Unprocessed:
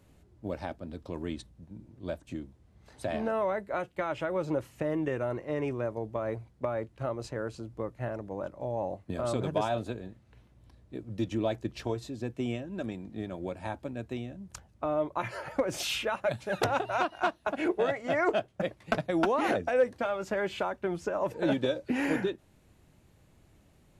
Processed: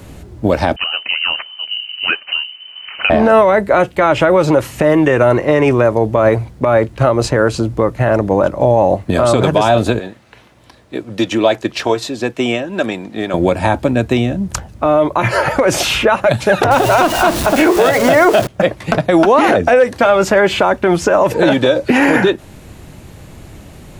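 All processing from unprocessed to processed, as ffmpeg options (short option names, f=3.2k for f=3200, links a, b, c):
-filter_complex "[0:a]asettb=1/sr,asplit=3[a][b][c];[a]atrim=end=0.764[d];[b]atrim=start=0.76:end=3.1,asetpts=PTS-STARTPTS,afade=t=in:d=0.004:c=qsin,afade=t=out:st=2.336:d=0.004:c=qsin,acrusher=samples=12:mix=1:aa=0.000001:lfo=1:lforange=19.2:lforate=1.6,lowpass=f=2.6k:t=q:w=0.5098,lowpass=f=2.6k:t=q:w=0.6013,lowpass=f=2.6k:t=q:w=0.9,lowpass=f=2.6k:t=q:w=2.563,afreqshift=-3100[e];[c]atrim=start=3.096[f];[d][e]acrossfade=d=0.004:c1=hsin:c2=qsin[g];[g][f]acrossfade=d=0.004:c1=qsin:c2=hsin,asettb=1/sr,asplit=3[h][i][j];[h]atrim=end=9.994[k];[i]atrim=start=9.99:end=13.34,asetpts=PTS-STARTPTS,afade=t=in:d=0.004:c=qsin,afade=t=out:st=3.346:d=0.004:c=qsin,highpass=f=830:p=1,highshelf=f=6.4k:g=-6[l];[j]atrim=start=13.336[m];[k][l]acrossfade=d=0.004:c1=hsin:c2=qsin[n];[n][m]acrossfade=d=0.004:c1=qsin:c2=hsin,asettb=1/sr,asplit=3[o][p][q];[o]atrim=end=16.714[r];[p]atrim=start=16.71:end=18.47,asetpts=PTS-STARTPTS,afade=t=in:d=0.004:c=qsin,afade=t=out:st=1.756:d=0.004:c=qsin,aeval=exprs='val(0)+0.5*0.015*sgn(val(0))':c=same,bass=f=250:g=1,treble=f=4k:g=6,bandreject=f=69.34:t=h:w=4,bandreject=f=138.68:t=h:w=4,bandreject=f=208.02:t=h:w=4,bandreject=f=277.36:t=h:w=4,bandreject=f=346.7:t=h:w=4,bandreject=f=416.04:t=h:w=4,bandreject=f=485.38:t=h:w=4,bandreject=f=554.72:t=h:w=4[s];[q]atrim=start=18.466[t];[r][s]acrossfade=d=0.004:c1=hsin:c2=qsin[u];[u][t]acrossfade=d=0.004:c1=qsin:c2=hsin,acrossover=split=580|1700[v][w][x];[v]acompressor=threshold=-36dB:ratio=4[y];[w]acompressor=threshold=-35dB:ratio=4[z];[x]acompressor=threshold=-45dB:ratio=4[aa];[y][z][aa]amix=inputs=3:normalize=0,alimiter=level_in=26.5dB:limit=-1dB:release=50:level=0:latency=1,volume=-1dB"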